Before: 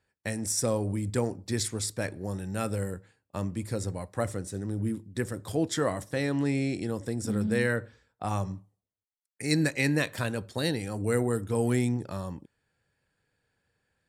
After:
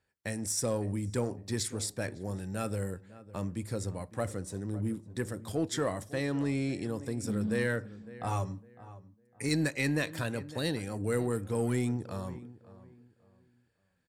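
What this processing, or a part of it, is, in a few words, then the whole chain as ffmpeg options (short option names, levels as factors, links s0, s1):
parallel distortion: -filter_complex "[0:a]asettb=1/sr,asplit=3[s0][s1][s2];[s0]atrim=end=8.264[s3];[s1]atrim=start=8.26:end=9.49,asetpts=PTS-STARTPTS,afade=t=in:d=0.004:c=qsin,afade=t=out:st=1.226:d=0.004:c=qsin,aecho=1:1:7.2:0.72,atrim=end_sample=54243[s4];[s2]atrim=start=9.486[s5];[s3][s4]acrossfade=d=0.004:c1=hsin:c2=qsin[s6];[s6][s5]acrossfade=d=0.004:c1=qsin:c2=hsin,asplit=2[s7][s8];[s8]adelay=555,lowpass=f=1600:p=1,volume=0.141,asplit=2[s9][s10];[s10]adelay=555,lowpass=f=1600:p=1,volume=0.3,asplit=2[s11][s12];[s12]adelay=555,lowpass=f=1600:p=1,volume=0.3[s13];[s7][s9][s11][s13]amix=inputs=4:normalize=0,asplit=2[s14][s15];[s15]asoftclip=type=hard:threshold=0.0668,volume=0.501[s16];[s14][s16]amix=inputs=2:normalize=0,volume=0.473"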